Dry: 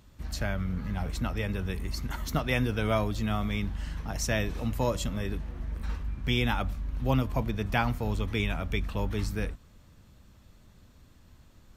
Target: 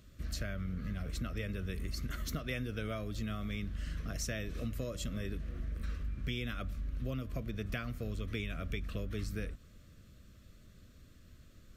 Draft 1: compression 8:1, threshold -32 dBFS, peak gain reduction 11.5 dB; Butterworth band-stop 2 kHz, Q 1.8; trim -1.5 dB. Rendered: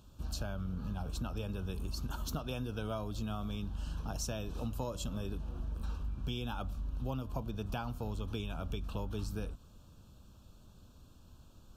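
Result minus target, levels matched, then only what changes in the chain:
2 kHz band -6.5 dB
change: Butterworth band-stop 870 Hz, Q 1.8

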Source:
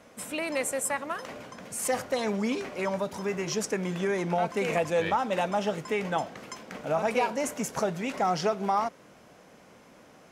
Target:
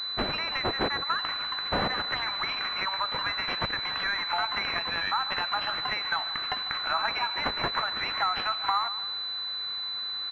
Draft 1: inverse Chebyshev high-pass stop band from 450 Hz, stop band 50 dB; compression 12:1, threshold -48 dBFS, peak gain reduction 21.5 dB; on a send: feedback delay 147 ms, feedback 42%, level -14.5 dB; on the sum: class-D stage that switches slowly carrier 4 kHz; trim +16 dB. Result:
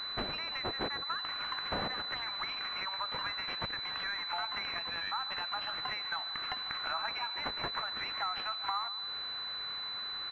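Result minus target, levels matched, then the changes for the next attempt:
compression: peak gain reduction +8.5 dB
change: compression 12:1, threshold -38.5 dBFS, peak gain reduction 13 dB

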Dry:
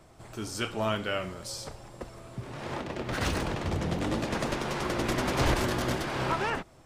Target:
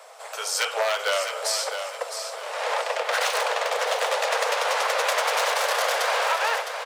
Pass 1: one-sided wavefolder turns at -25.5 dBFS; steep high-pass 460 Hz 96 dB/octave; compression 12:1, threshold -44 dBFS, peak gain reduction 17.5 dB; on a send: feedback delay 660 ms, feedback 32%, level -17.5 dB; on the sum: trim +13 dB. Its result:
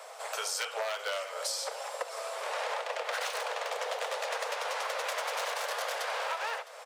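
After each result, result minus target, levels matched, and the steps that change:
compression: peak gain reduction +10 dB; echo-to-direct -9.5 dB
change: compression 12:1, threshold -33 dBFS, peak gain reduction 7.5 dB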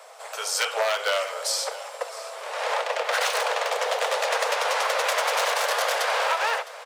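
echo-to-direct -9.5 dB
change: feedback delay 660 ms, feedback 32%, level -8 dB

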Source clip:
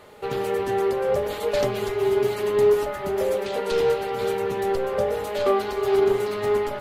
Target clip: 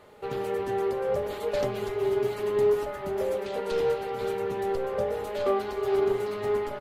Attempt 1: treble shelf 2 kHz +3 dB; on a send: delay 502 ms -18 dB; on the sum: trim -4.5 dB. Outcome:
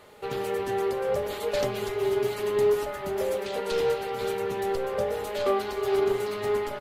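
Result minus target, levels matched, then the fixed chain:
4 kHz band +4.5 dB
treble shelf 2 kHz -4 dB; on a send: delay 502 ms -18 dB; on the sum: trim -4.5 dB

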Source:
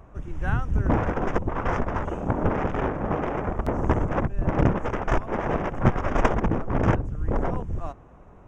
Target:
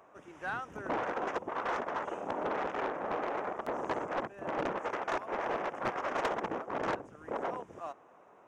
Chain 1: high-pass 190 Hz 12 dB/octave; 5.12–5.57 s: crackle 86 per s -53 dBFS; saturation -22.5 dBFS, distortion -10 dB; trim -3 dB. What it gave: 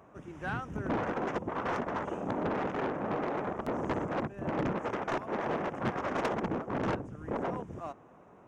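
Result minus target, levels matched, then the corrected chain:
250 Hz band +5.5 dB
high-pass 460 Hz 12 dB/octave; 5.12–5.57 s: crackle 86 per s -53 dBFS; saturation -22.5 dBFS, distortion -13 dB; trim -3 dB

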